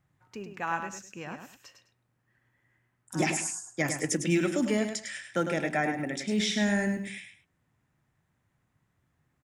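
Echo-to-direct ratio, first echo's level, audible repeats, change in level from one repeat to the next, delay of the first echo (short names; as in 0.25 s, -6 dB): -7.0 dB, -7.5 dB, 2, -12.0 dB, 0.103 s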